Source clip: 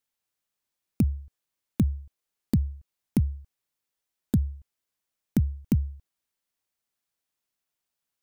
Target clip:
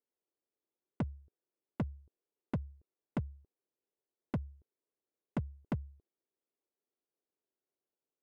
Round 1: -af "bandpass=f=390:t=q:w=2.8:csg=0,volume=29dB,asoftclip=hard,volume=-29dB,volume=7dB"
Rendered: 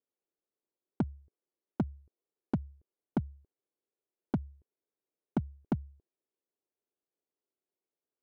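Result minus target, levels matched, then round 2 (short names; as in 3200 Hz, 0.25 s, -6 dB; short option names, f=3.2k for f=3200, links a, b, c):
overloaded stage: distortion -5 dB
-af "bandpass=f=390:t=q:w=2.8:csg=0,volume=35.5dB,asoftclip=hard,volume=-35.5dB,volume=7dB"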